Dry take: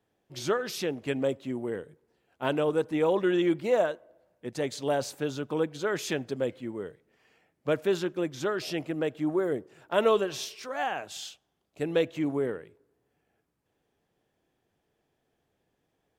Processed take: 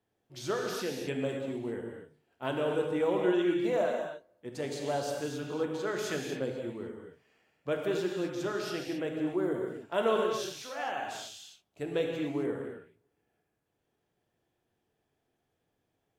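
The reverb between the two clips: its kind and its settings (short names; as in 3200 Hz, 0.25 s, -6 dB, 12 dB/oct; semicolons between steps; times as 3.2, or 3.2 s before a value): non-linear reverb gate 0.29 s flat, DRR 0.5 dB; gain -6 dB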